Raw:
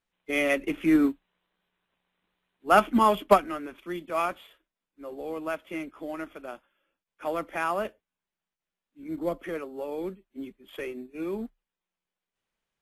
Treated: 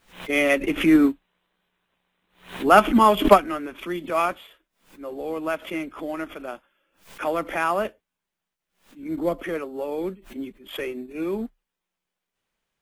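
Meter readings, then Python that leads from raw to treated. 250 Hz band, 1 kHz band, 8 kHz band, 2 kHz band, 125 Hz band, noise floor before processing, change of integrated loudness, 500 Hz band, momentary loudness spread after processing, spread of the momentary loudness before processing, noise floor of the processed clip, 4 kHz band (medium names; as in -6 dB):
+5.5 dB, +5.0 dB, +5.5 dB, +5.5 dB, +5.5 dB, under -85 dBFS, +5.0 dB, +5.5 dB, 20 LU, 20 LU, -85 dBFS, +7.5 dB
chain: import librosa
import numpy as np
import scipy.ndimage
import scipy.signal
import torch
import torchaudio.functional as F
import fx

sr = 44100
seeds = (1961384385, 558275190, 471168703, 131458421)

y = fx.pre_swell(x, sr, db_per_s=140.0)
y = y * librosa.db_to_amplitude(5.0)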